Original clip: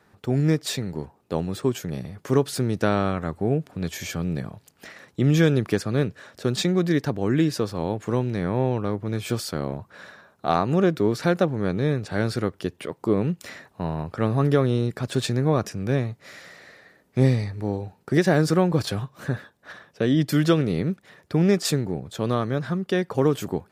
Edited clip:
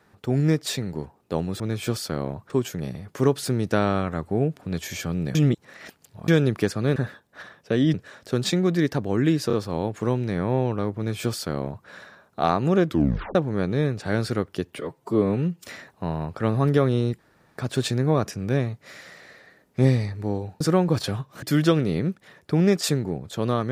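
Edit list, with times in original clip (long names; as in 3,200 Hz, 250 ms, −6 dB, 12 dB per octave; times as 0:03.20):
0:04.45–0:05.38: reverse
0:07.59: stutter 0.03 s, 3 plays
0:09.03–0:09.93: duplicate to 0:01.60
0:10.94: tape stop 0.47 s
0:12.85–0:13.42: time-stretch 1.5×
0:14.96: splice in room tone 0.39 s
0:17.99–0:18.44: remove
0:19.26–0:20.24: move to 0:06.06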